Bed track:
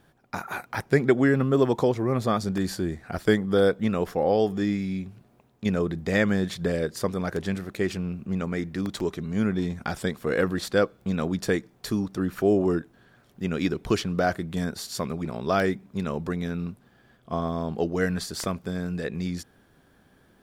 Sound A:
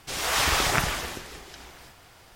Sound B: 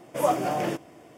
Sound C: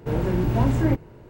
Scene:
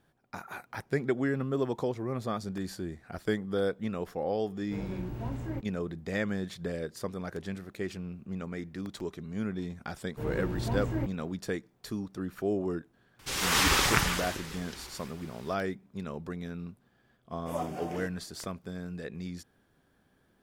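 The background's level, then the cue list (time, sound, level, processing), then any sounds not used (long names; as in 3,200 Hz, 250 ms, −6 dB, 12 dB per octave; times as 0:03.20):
bed track −9 dB
0:04.65: mix in C −15.5 dB
0:10.11: mix in C −11 dB, fades 0.10 s
0:13.19: mix in A −1 dB + parametric band 670 Hz −9 dB 0.37 octaves
0:17.31: mix in B −12.5 dB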